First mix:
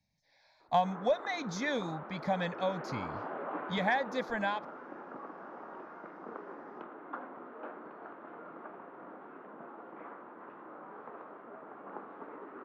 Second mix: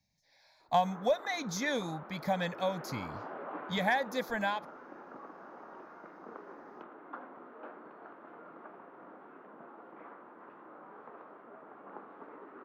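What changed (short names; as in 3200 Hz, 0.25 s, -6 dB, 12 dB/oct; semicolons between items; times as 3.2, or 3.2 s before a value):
background -3.5 dB; master: remove air absorption 92 m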